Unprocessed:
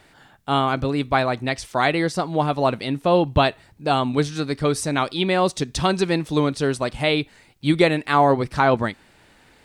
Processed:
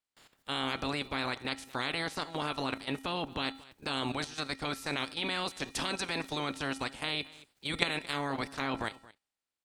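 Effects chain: spectral limiter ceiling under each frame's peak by 22 dB; dynamic EQ 270 Hz, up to +5 dB, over -42 dBFS, Q 4.8; level quantiser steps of 13 dB; gate with hold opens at -53 dBFS; resonator 270 Hz, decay 0.61 s, harmonics odd, mix 60%; on a send: echo 0.225 s -20.5 dB

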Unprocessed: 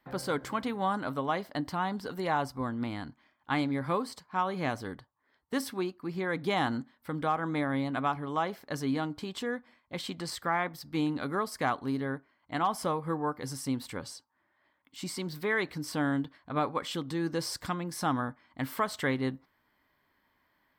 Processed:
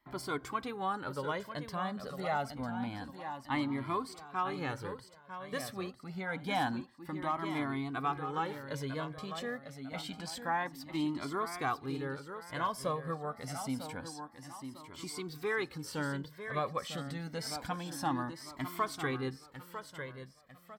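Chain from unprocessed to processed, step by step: feedback echo 0.95 s, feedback 37%, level -9 dB; cascading flanger rising 0.27 Hz

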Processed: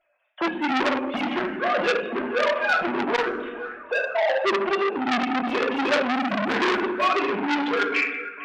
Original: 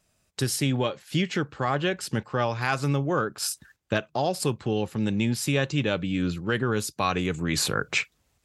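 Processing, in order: sine-wave speech; 3.27–3.98 HPF 250 Hz 24 dB/oct; 6.13–6.82 sample leveller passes 1; compressor 1.5:1, threshold -29 dBFS, peak gain reduction 4.5 dB; overloaded stage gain 20.5 dB; flange 1.2 Hz, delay 2.9 ms, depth 2.7 ms, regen +4%; narrowing echo 0.459 s, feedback 71%, band-pass 1300 Hz, level -15 dB; reverb RT60 0.90 s, pre-delay 5 ms, DRR -1.5 dB; core saturation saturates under 2800 Hz; gain +8.5 dB

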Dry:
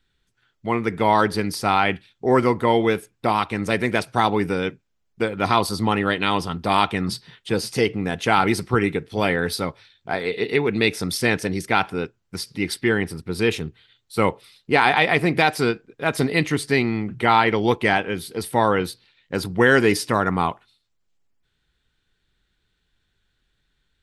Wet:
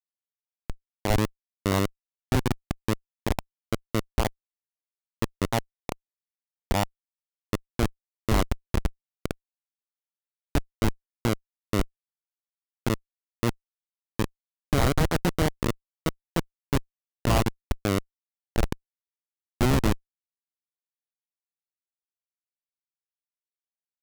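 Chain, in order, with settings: echo 0.367 s -18 dB; formant shift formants -4 st; Schmitt trigger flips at -12.5 dBFS; gain +3 dB

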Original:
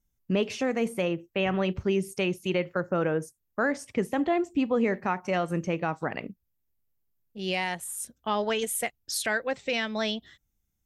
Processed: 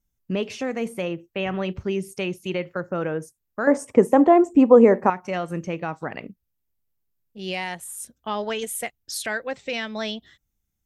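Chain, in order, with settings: 3.67–5.1 ten-band EQ 250 Hz +8 dB, 500 Hz +11 dB, 1000 Hz +11 dB, 4000 Hz -9 dB, 8000 Hz +9 dB

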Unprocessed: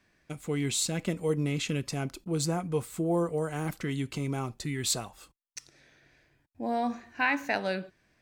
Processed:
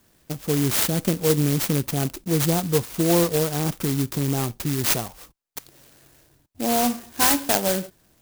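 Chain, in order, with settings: clock jitter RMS 0.15 ms; gain +8.5 dB

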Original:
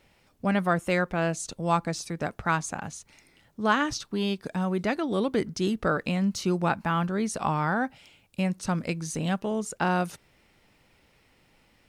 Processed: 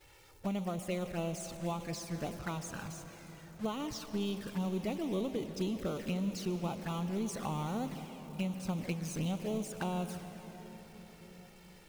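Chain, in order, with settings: zero-crossing step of -26.5 dBFS; expander -21 dBFS; compressor 8:1, threshold -29 dBFS, peak gain reduction 13 dB; envelope flanger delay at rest 2.5 ms, full sweep at -29 dBFS; reverb RT60 5.1 s, pre-delay 0.109 s, DRR 9.5 dB; gain -2.5 dB

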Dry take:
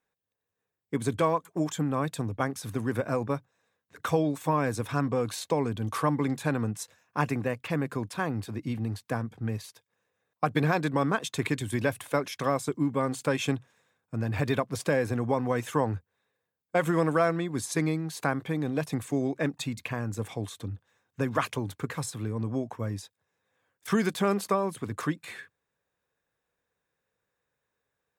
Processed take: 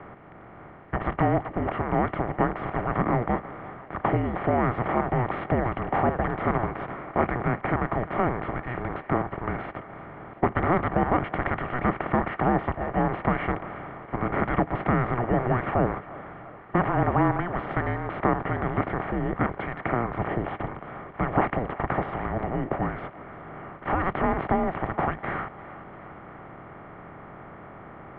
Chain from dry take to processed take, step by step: per-bin compression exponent 0.4; mistuned SSB -360 Hz 460–2500 Hz; thinning echo 0.348 s, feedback 68%, high-pass 420 Hz, level -17 dB

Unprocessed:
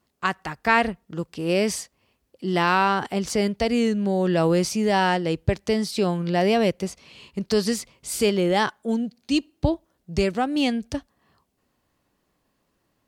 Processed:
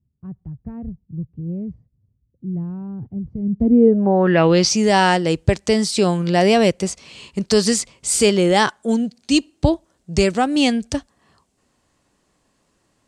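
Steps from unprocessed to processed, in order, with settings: low-pass sweep 120 Hz -> 8100 Hz, 3.41–4.81; gain +5.5 dB

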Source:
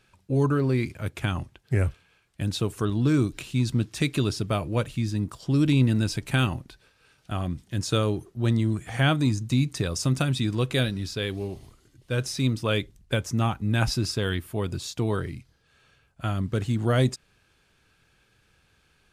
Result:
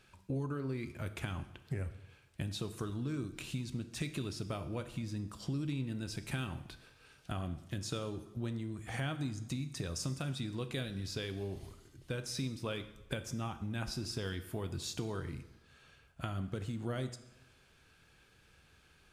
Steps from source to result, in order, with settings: compressor 6:1, threshold -35 dBFS, peak gain reduction 17.5 dB; plate-style reverb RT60 0.99 s, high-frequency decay 0.85×, DRR 9.5 dB; gain -1 dB

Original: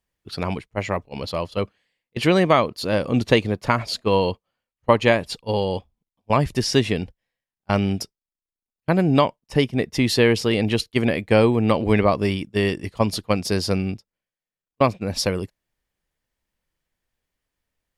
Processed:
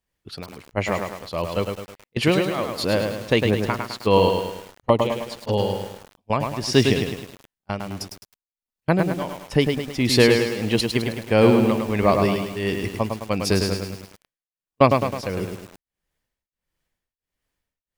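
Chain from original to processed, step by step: tremolo triangle 1.5 Hz, depth 100%; 4.29–5.59 envelope flanger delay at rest 9.8 ms, full sweep at -20 dBFS; lo-fi delay 0.105 s, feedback 55%, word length 7-bit, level -4.5 dB; gain +3 dB

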